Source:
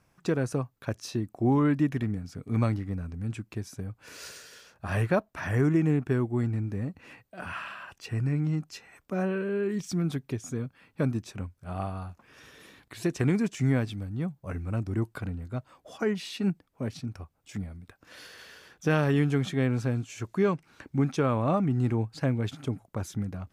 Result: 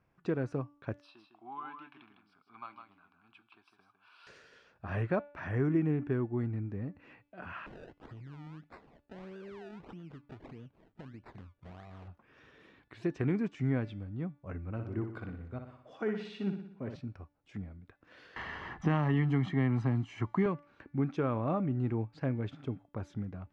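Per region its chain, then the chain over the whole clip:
0:01.01–0:04.27: Chebyshev high-pass filter 970 Hz + phaser with its sweep stopped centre 1,900 Hz, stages 6 + single-tap delay 155 ms −7 dB
0:07.66–0:12.08: downward compressor 12 to 1, threshold −38 dBFS + sample-and-hold swept by an LFO 28× 1.6 Hz
0:14.71–0:16.96: low-shelf EQ 190 Hz −4 dB + repeating echo 60 ms, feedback 54%, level −7 dB
0:18.36–0:20.46: parametric band 890 Hz +3.5 dB 2 octaves + comb filter 1 ms, depth 67% + multiband upward and downward compressor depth 70%
whole clip: low-pass filter 2,700 Hz 12 dB per octave; parametric band 340 Hz +2.5 dB 0.77 octaves; hum removal 289.7 Hz, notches 19; level −6.5 dB

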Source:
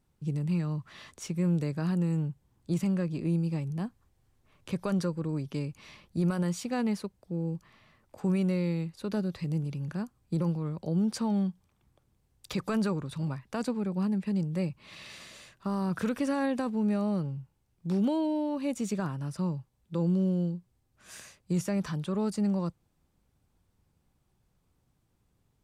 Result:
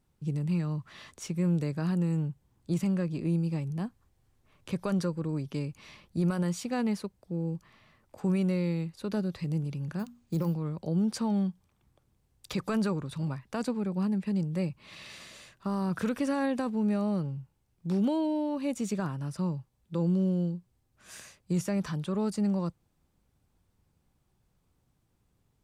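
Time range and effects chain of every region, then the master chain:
0:09.99–0:10.54: high-shelf EQ 7,600 Hz +7 dB + mains-hum notches 60/120/180/240 Hz + bad sample-rate conversion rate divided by 3×, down none, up hold
whole clip: no processing

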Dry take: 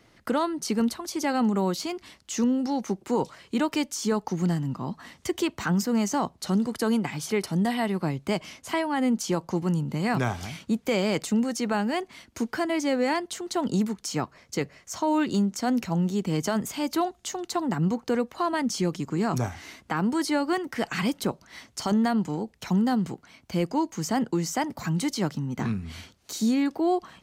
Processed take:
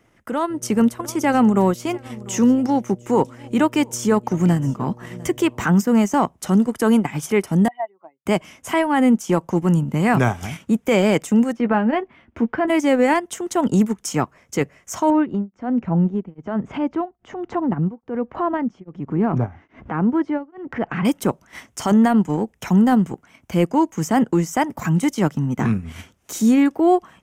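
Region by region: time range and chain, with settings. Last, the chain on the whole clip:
0:00.49–0:05.64: hum with harmonics 120 Hz, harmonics 5, −46 dBFS −5 dB per octave + single-tap delay 700 ms −21 dB
0:07.68–0:08.26: expanding power law on the bin magnitudes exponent 2.3 + high-pass filter 710 Hz 24 dB per octave
0:11.52–0:12.68: high-frequency loss of the air 370 metres + double-tracking delay 13 ms −9.5 dB
0:15.10–0:21.05: head-to-tape spacing loss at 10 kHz 45 dB + upward compression, threshold −28 dBFS + tremolo along a rectified sine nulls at 1.2 Hz
whole clip: parametric band 4,300 Hz −15 dB 0.46 octaves; transient designer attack −3 dB, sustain −8 dB; automatic gain control gain up to 9.5 dB

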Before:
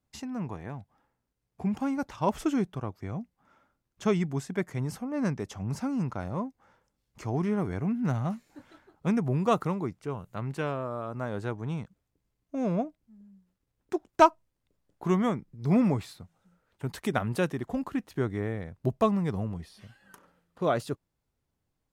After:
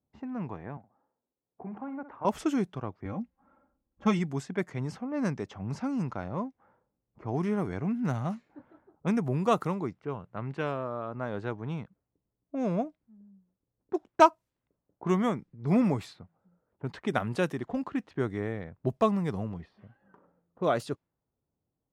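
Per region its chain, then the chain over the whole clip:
0:00.77–0:02.25: three-way crossover with the lows and the highs turned down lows −13 dB, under 240 Hz, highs −16 dB, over 2,200 Hz + downward compressor 2.5 to 1, threshold −36 dBFS + flutter between parallel walls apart 10.8 metres, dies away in 0.31 s
0:03.05–0:04.19: low-shelf EQ 77 Hz +11 dB + comb filter 3.7 ms, depth 73%
whole clip: low-pass that shuts in the quiet parts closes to 740 Hz, open at −24.5 dBFS; high-pass filter 120 Hz 6 dB per octave

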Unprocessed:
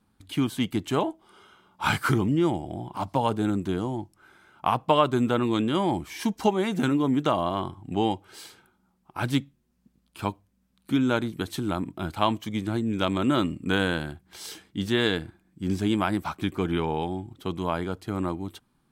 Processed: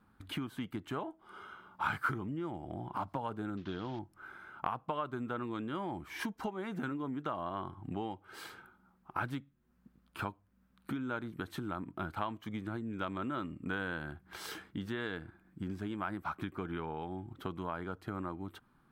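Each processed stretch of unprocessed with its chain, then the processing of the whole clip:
0:03.57–0:03.99: variable-slope delta modulation 32 kbit/s + parametric band 3,400 Hz +12 dB 0.91 octaves
whole clip: parametric band 7,300 Hz −9.5 dB 2.3 octaves; downward compressor 5 to 1, threshold −38 dBFS; parametric band 1,400 Hz +8.5 dB 0.92 octaves

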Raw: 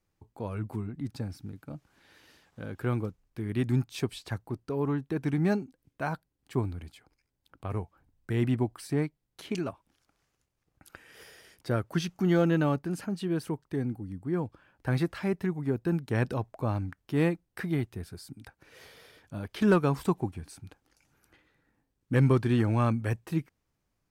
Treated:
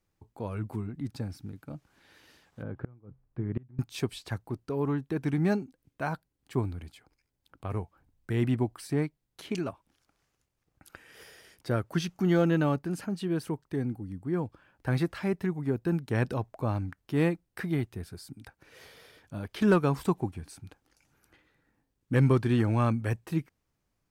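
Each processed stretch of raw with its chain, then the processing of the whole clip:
0:02.62–0:03.79: low-pass filter 1,300 Hz + parametric band 130 Hz +11.5 dB 0.21 octaves + gate with flip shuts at −19 dBFS, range −30 dB
whole clip: no processing

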